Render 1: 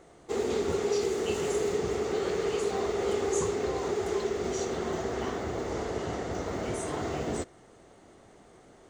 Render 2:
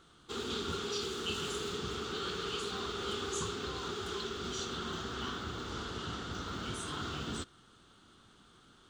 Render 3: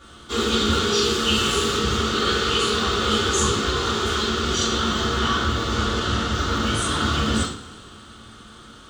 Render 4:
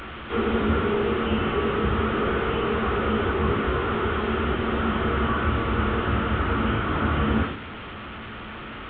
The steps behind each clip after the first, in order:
FFT filter 230 Hz 0 dB, 660 Hz -14 dB, 1.4 kHz +9 dB, 2 kHz -7 dB, 3.3 kHz +13 dB, 6.5 kHz -1 dB, 9.8 kHz +1 dB; trim -4.5 dB
two-slope reverb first 0.47 s, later 2.7 s, from -22 dB, DRR -9 dB; trim +7.5 dB
one-bit delta coder 16 kbps, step -30 dBFS

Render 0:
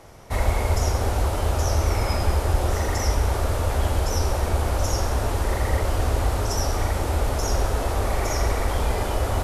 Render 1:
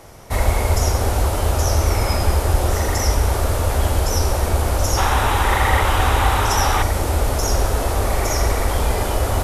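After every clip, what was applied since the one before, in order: treble shelf 8.3 kHz +7 dB; time-frequency box 4.97–6.82 s, 740–4000 Hz +9 dB; trim +4 dB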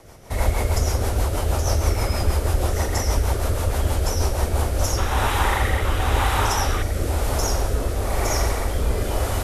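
rotary cabinet horn 6.3 Hz, later 1 Hz, at 4.29 s; trim -1.5 dB

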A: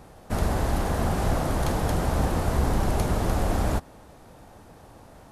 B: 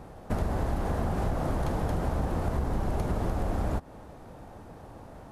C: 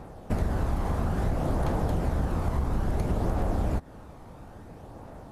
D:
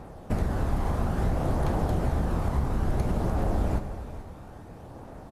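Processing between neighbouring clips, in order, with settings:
treble shelf 2.2 kHz -9.5 dB; compression, threshold -28 dBFS, peak gain reduction 10 dB; trim +3 dB
phaser 0.59 Hz, delay 1 ms, feedback 25%
delay 431 ms -14 dB; on a send at -8.5 dB: reverberation RT60 2.2 s, pre-delay 19 ms

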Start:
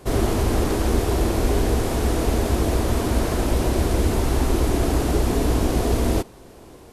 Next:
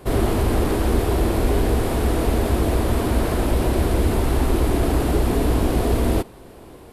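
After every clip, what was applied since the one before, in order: peaking EQ 6.2 kHz -8 dB 0.72 oct; in parallel at -11 dB: saturation -22 dBFS, distortion -9 dB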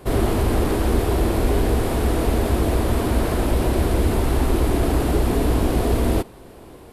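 no audible change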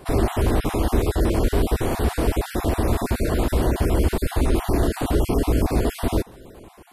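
random holes in the spectrogram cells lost 30%

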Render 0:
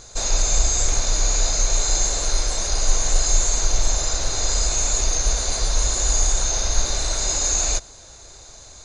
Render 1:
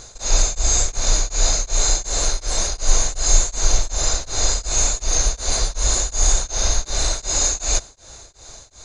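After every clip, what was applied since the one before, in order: tremolo of two beating tones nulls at 2.7 Hz; trim +4 dB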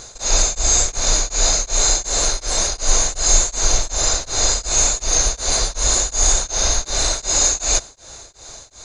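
bass shelf 130 Hz -6 dB; trim +3.5 dB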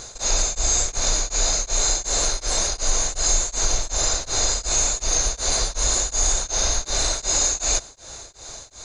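compression 2:1, threshold -20 dBFS, peak gain reduction 7 dB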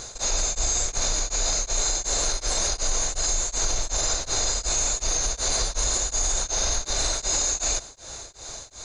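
peak limiter -14.5 dBFS, peak gain reduction 6.5 dB

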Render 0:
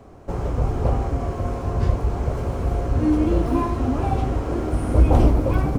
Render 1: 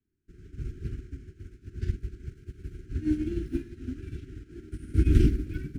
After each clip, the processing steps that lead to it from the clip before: Chebyshev band-stop 380–1500 Hz, order 4; hum notches 60/120/180/240 Hz; upward expansion 2.5:1, over -36 dBFS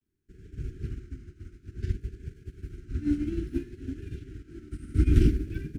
vibrato 0.57 Hz 70 cents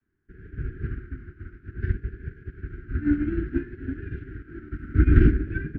resonant low-pass 1.6 kHz, resonance Q 3.9; trim +4 dB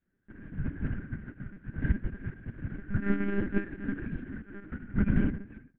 fade out at the end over 1.62 s; monotone LPC vocoder at 8 kHz 200 Hz; trim -1.5 dB

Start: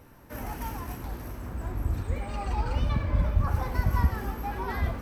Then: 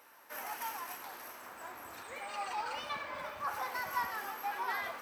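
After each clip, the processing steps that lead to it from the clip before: high-pass 860 Hz 12 dB/octave; trim +1 dB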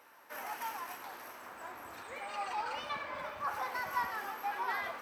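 treble shelf 5.1 kHz -6.5 dB; trim +1 dB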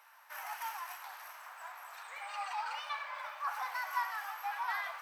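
inverse Chebyshev high-pass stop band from 290 Hz, stop band 50 dB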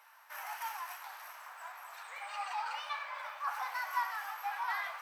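flange 1.6 Hz, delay 9.7 ms, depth 4.7 ms, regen -62%; trim +4.5 dB

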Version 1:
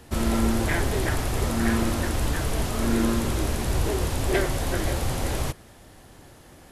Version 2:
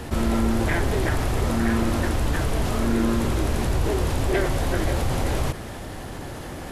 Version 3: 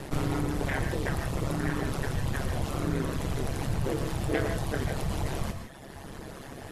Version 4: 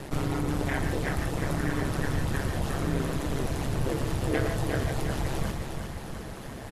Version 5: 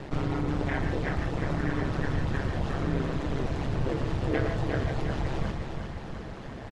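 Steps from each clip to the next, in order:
treble shelf 3.8 kHz -6.5 dB; level flattener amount 50%
reverb removal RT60 1.5 s; ring modulator 69 Hz; gated-style reverb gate 180 ms rising, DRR 6.5 dB; trim -2 dB
feedback delay 356 ms, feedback 59%, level -6 dB
distance through air 130 m; resampled via 32 kHz

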